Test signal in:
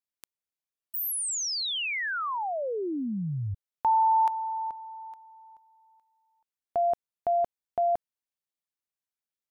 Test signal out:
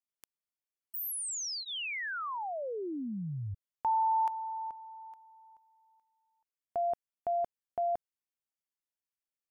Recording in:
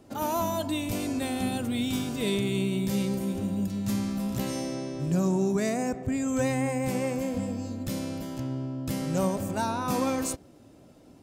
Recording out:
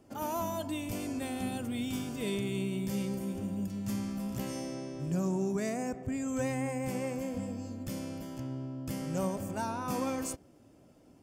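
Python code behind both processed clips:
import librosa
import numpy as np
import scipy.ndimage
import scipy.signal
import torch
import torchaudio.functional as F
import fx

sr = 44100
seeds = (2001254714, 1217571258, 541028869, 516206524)

y = fx.notch(x, sr, hz=3900.0, q=6.3)
y = F.gain(torch.from_numpy(y), -6.0).numpy()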